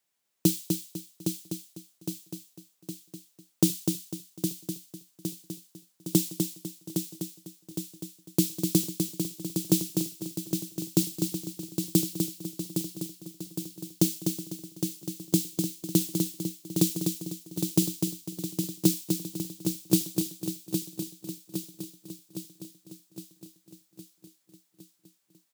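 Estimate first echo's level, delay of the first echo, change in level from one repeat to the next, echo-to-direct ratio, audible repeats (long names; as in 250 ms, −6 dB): −5.5 dB, 250 ms, repeats not evenly spaced, −1.5 dB, 19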